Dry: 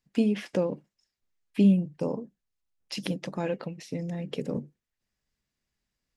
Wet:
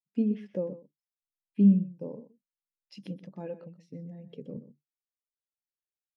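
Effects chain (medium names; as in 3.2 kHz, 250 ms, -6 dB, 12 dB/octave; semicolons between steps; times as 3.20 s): on a send: delay 125 ms -10 dB; on the sum: spectral contrast expander 1.5:1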